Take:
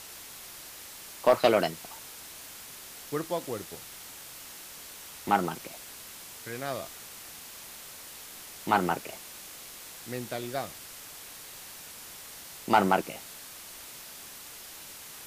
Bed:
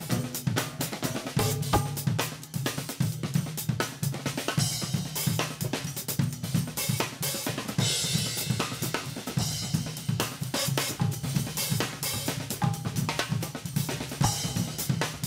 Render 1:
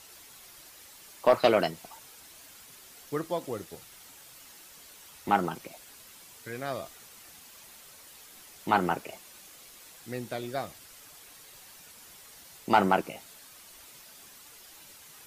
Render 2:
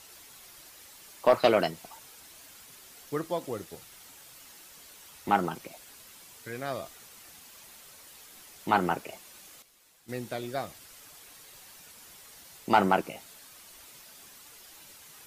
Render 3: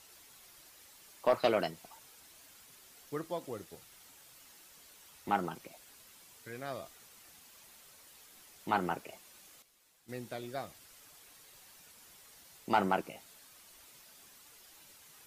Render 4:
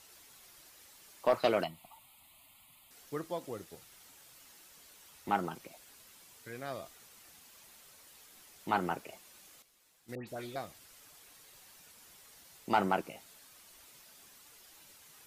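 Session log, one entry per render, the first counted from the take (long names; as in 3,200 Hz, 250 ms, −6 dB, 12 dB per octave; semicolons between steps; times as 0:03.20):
broadband denoise 8 dB, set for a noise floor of −46 dBFS
0:09.62–0:10.10: noise gate −44 dBFS, range −11 dB
level −6.5 dB
0:01.64–0:02.91: phaser with its sweep stopped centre 1,600 Hz, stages 6; 0:10.15–0:10.56: all-pass dispersion highs, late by 123 ms, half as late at 2,000 Hz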